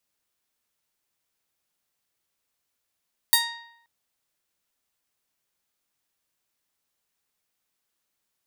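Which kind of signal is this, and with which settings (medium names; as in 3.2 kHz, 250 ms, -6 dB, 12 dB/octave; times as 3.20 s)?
plucked string A#5, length 0.53 s, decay 0.78 s, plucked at 0.35, bright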